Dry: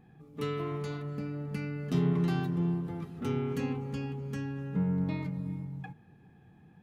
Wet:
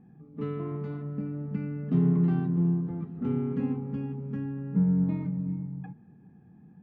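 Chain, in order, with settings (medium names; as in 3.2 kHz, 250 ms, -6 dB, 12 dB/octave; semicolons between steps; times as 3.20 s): low-pass 1.7 kHz 12 dB/octave; peaking EQ 210 Hz +11.5 dB 1.2 oct; trim -4 dB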